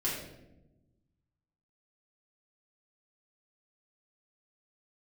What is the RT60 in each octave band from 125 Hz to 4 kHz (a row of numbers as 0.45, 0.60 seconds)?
1.9, 1.6, 1.2, 0.85, 0.70, 0.60 seconds